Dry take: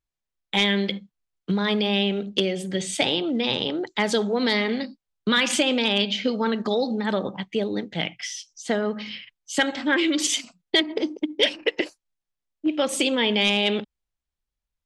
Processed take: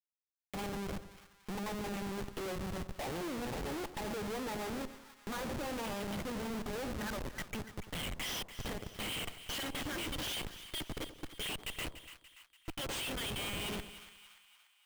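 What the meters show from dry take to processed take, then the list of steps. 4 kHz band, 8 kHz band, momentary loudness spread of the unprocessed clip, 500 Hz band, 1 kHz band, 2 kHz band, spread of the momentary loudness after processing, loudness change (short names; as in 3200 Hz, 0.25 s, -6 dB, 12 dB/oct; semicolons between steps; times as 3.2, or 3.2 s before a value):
-17.0 dB, -13.0 dB, 10 LU, -17.0 dB, -11.5 dB, -16.5 dB, 10 LU, -16.0 dB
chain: low shelf 400 Hz +7 dB; limiter -15.5 dBFS, peak gain reduction 9 dB; compressor 6:1, threshold -24 dBFS, peak gain reduction 6 dB; band-pass sweep 890 Hz -> 2900 Hz, 6.53–7.83; rotary speaker horn 7.5 Hz, later 0.85 Hz, at 4.72; Schmitt trigger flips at -46.5 dBFS; split-band echo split 1000 Hz, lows 93 ms, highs 0.289 s, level -12.5 dB; gain +6 dB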